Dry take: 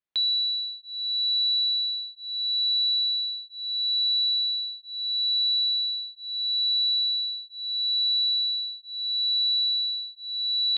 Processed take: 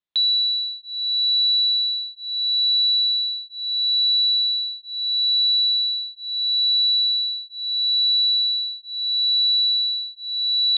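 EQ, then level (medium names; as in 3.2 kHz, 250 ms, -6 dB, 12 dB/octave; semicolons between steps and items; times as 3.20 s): distance through air 130 m; peaking EQ 3.7 kHz +10 dB 0.58 oct; 0.0 dB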